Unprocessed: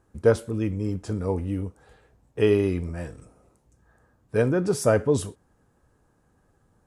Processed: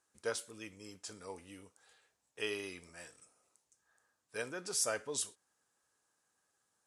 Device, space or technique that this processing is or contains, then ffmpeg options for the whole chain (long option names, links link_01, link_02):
piezo pickup straight into a mixer: -af "lowpass=7500,aderivative,volume=4dB"